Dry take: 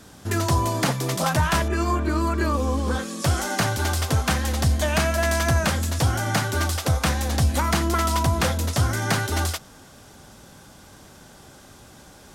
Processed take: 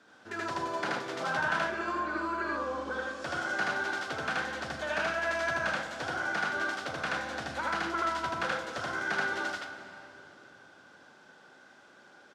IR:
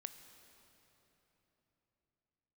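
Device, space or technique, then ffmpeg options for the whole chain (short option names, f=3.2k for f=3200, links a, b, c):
station announcement: -filter_complex "[0:a]highpass=320,lowpass=4k,equalizer=f=1.5k:t=o:w=0.24:g=10,aecho=1:1:78.72|119.5:1|0.282[a];[1:a]atrim=start_sample=2205[b];[a][b]afir=irnorm=-1:irlink=0,volume=-7dB"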